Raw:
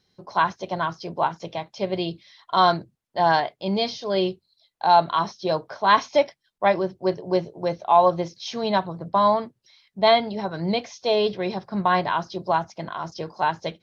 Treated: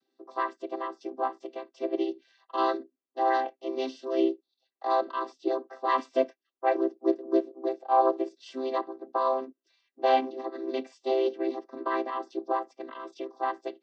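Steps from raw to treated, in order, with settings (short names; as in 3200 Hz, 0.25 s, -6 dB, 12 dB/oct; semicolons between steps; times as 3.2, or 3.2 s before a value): chord vocoder major triad, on C4; spectral gain 12.89–13.25, 2000–4000 Hz +7 dB; gain -5.5 dB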